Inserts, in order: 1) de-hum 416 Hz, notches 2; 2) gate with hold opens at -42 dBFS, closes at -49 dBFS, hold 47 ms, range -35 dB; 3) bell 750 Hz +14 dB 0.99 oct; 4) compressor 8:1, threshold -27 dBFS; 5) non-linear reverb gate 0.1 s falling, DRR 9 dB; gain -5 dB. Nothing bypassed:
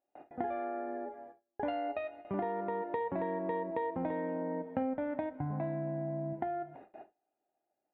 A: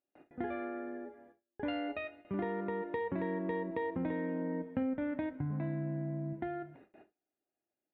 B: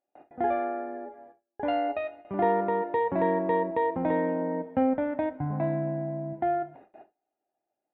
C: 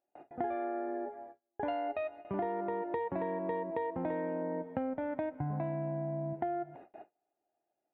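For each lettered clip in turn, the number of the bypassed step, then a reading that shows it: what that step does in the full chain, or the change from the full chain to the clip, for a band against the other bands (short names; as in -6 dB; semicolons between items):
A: 3, 1 kHz band -8.0 dB; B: 4, mean gain reduction 6.0 dB; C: 5, momentary loudness spread change -2 LU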